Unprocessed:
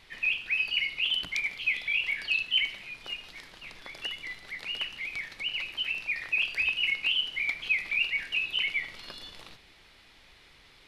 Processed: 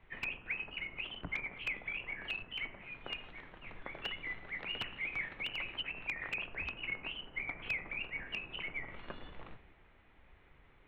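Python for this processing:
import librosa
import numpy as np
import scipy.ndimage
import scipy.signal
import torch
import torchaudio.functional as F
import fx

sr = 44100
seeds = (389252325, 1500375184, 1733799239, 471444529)

y = fx.wiener(x, sr, points=9)
y = fx.env_lowpass_down(y, sr, base_hz=1300.0, full_db=-29.5)
y = (np.mod(10.0 ** (27.5 / 20.0) * y + 1.0, 2.0) - 1.0) / 10.0 ** (27.5 / 20.0)
y = fx.air_absorb(y, sr, metres=290.0)
y = fx.band_widen(y, sr, depth_pct=40)
y = F.gain(torch.from_numpy(y), 4.0).numpy()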